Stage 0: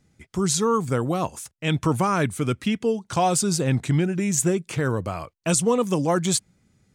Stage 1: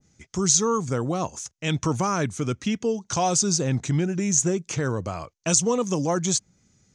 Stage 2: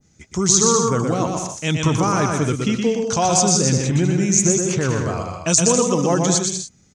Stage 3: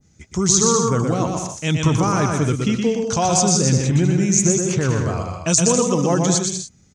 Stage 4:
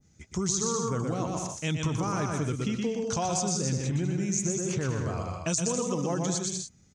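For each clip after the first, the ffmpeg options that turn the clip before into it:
ffmpeg -i in.wav -filter_complex "[0:a]asplit=2[link_01][link_02];[link_02]alimiter=limit=-16dB:level=0:latency=1:release=114,volume=-1dB[link_03];[link_01][link_03]amix=inputs=2:normalize=0,lowpass=frequency=6300:width_type=q:width=5.3,adynamicequalizer=threshold=0.0224:dfrequency=1600:dqfactor=0.7:tfrequency=1600:tqfactor=0.7:attack=5:release=100:ratio=0.375:range=2.5:mode=cutabove:tftype=highshelf,volume=-6.5dB" out.wav
ffmpeg -i in.wav -af "aecho=1:1:120|198|248.7|281.7|303.1:0.631|0.398|0.251|0.158|0.1,volume=4dB" out.wav
ffmpeg -i in.wav -af "equalizer=frequency=68:width_type=o:width=2.5:gain=5,volume=-1dB" out.wav
ffmpeg -i in.wav -af "acompressor=threshold=-21dB:ratio=3,volume=-6dB" out.wav

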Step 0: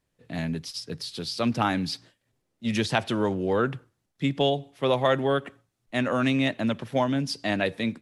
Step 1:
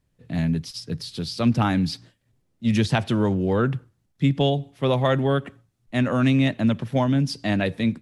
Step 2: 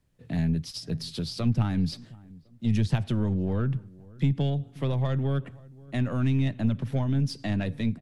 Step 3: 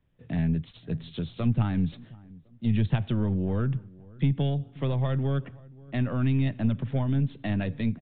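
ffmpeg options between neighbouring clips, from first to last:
ffmpeg -i in.wav -af "bass=frequency=250:gain=10,treble=frequency=4000:gain=0" out.wav
ffmpeg -i in.wav -filter_complex "[0:a]aeval=exprs='0.473*(cos(1*acos(clip(val(0)/0.473,-1,1)))-cos(1*PI/2))+0.0237*(cos(6*acos(clip(val(0)/0.473,-1,1)))-cos(6*PI/2))':channel_layout=same,acrossover=split=180[link_01][link_02];[link_02]acompressor=threshold=-33dB:ratio=5[link_03];[link_01][link_03]amix=inputs=2:normalize=0,asplit=2[link_04][link_05];[link_05]adelay=529,lowpass=frequency=960:poles=1,volume=-22dB,asplit=2[link_06][link_07];[link_07]adelay=529,lowpass=frequency=960:poles=1,volume=0.37,asplit=2[link_08][link_09];[link_09]adelay=529,lowpass=frequency=960:poles=1,volume=0.37[link_10];[link_04][link_06][link_08][link_10]amix=inputs=4:normalize=0" out.wav
ffmpeg -i in.wav -af "aresample=8000,aresample=44100" out.wav

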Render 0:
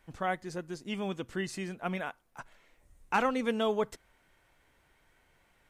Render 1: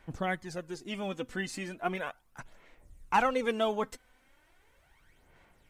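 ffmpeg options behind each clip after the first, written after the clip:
ffmpeg -i in.wav -af "aphaser=in_gain=1:out_gain=1:delay=4:decay=0.54:speed=0.37:type=sinusoidal" out.wav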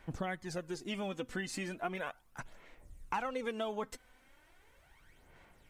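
ffmpeg -i in.wav -af "acompressor=threshold=-35dB:ratio=5,volume=1dB" out.wav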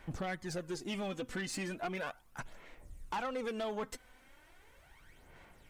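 ffmpeg -i in.wav -af "asoftclip=type=tanh:threshold=-34.5dB,volume=3dB" out.wav

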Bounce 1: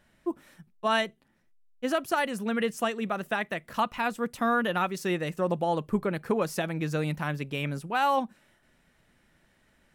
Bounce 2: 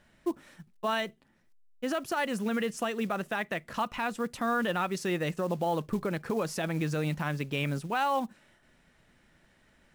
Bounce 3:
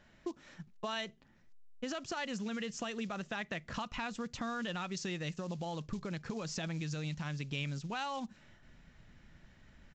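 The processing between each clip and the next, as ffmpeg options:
ffmpeg -i in.wav -af "alimiter=limit=-22dB:level=0:latency=1:release=80,lowpass=9600,acrusher=bits=6:mode=log:mix=0:aa=0.000001,volume=1.5dB" out.wav
ffmpeg -i in.wav -filter_complex "[0:a]asubboost=boost=2.5:cutoff=220,acrossover=split=3000[link_01][link_02];[link_01]acompressor=threshold=-37dB:ratio=6[link_03];[link_03][link_02]amix=inputs=2:normalize=0,aresample=16000,aresample=44100" out.wav

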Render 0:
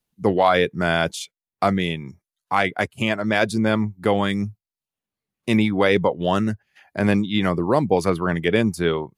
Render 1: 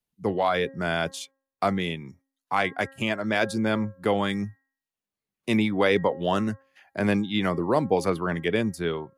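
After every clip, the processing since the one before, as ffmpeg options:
ffmpeg -i in.wav -filter_complex "[0:a]bandreject=frequency=269.9:width_type=h:width=4,bandreject=frequency=539.8:width_type=h:width=4,bandreject=frequency=809.7:width_type=h:width=4,bandreject=frequency=1079.6:width_type=h:width=4,bandreject=frequency=1349.5:width_type=h:width=4,bandreject=frequency=1619.4:width_type=h:width=4,bandreject=frequency=1889.3:width_type=h:width=4,acrossover=split=190[link_01][link_02];[link_02]dynaudnorm=framelen=240:gausssize=9:maxgain=6.5dB[link_03];[link_01][link_03]amix=inputs=2:normalize=0,volume=-7dB" out.wav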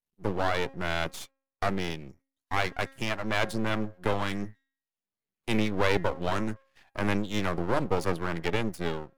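ffmpeg -i in.wav -af "aeval=exprs='max(val(0),0)':channel_layout=same" out.wav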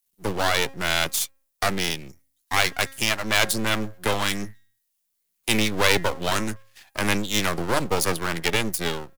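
ffmpeg -i in.wav -filter_complex "[0:a]acrossover=split=100[link_01][link_02];[link_01]aecho=1:1:65|130|195|260:0.106|0.0519|0.0254|0.0125[link_03];[link_02]crystalizer=i=6:c=0[link_04];[link_03][link_04]amix=inputs=2:normalize=0,volume=2dB" out.wav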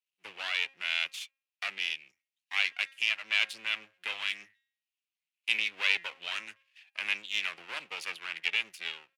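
ffmpeg -i in.wav -af "bandpass=frequency=2600:width_type=q:width=4:csg=0" out.wav

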